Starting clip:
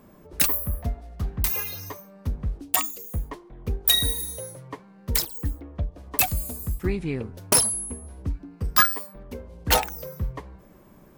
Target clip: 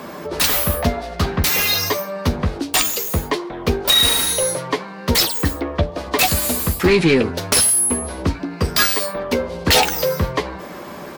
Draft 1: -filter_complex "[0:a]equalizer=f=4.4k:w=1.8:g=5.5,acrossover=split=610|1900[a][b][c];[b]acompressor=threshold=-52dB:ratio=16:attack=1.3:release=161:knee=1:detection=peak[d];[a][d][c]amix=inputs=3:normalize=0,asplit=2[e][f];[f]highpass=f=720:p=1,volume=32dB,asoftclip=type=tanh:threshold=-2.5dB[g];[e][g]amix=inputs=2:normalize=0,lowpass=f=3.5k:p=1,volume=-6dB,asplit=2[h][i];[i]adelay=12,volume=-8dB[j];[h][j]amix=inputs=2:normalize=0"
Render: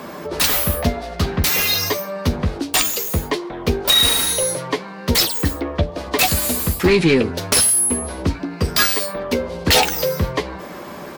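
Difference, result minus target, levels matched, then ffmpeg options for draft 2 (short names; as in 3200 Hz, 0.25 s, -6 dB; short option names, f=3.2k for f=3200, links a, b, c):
compressor: peak gain reduction +6.5 dB
-filter_complex "[0:a]equalizer=f=4.4k:w=1.8:g=5.5,acrossover=split=610|1900[a][b][c];[b]acompressor=threshold=-45dB:ratio=16:attack=1.3:release=161:knee=1:detection=peak[d];[a][d][c]amix=inputs=3:normalize=0,asplit=2[e][f];[f]highpass=f=720:p=1,volume=32dB,asoftclip=type=tanh:threshold=-2.5dB[g];[e][g]amix=inputs=2:normalize=0,lowpass=f=3.5k:p=1,volume=-6dB,asplit=2[h][i];[i]adelay=12,volume=-8dB[j];[h][j]amix=inputs=2:normalize=0"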